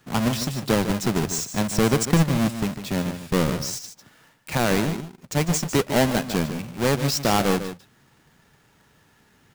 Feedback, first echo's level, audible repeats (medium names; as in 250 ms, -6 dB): no regular repeats, -10.5 dB, 1